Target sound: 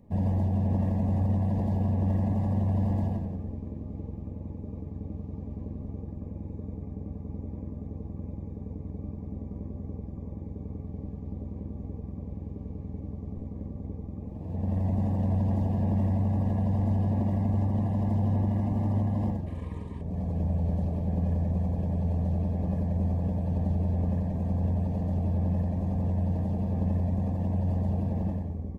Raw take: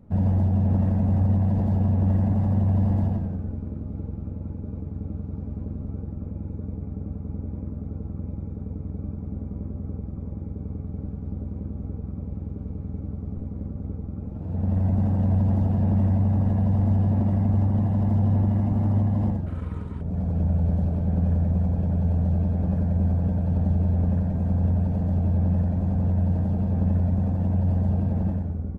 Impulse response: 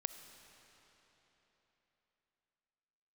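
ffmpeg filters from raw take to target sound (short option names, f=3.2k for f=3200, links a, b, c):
-af "asuperstop=centerf=1400:order=12:qfactor=3.5,bass=f=250:g=-4,treble=f=4k:g=3,volume=-1.5dB"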